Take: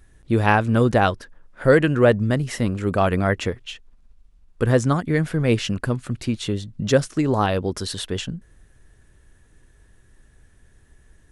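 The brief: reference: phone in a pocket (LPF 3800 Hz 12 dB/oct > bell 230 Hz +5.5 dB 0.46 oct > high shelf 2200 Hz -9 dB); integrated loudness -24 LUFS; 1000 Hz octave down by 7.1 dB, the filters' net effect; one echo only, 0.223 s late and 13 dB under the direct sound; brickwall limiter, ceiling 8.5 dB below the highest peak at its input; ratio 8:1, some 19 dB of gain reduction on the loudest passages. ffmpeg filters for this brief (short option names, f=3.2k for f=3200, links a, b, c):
-af "equalizer=f=1k:t=o:g=-8.5,acompressor=threshold=-32dB:ratio=8,alimiter=level_in=5dB:limit=-24dB:level=0:latency=1,volume=-5dB,lowpass=3.8k,equalizer=f=230:t=o:w=0.46:g=5.5,highshelf=f=2.2k:g=-9,aecho=1:1:223:0.224,volume=14.5dB"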